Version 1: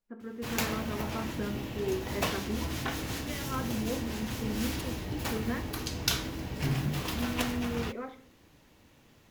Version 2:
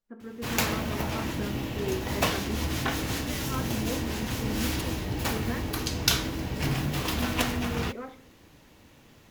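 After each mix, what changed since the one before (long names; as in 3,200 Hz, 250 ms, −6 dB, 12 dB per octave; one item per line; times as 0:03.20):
background +5.0 dB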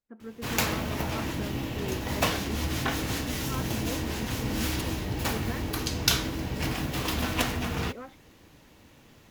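reverb: off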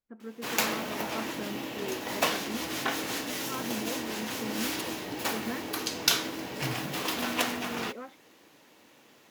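background: add high-pass filter 300 Hz 12 dB per octave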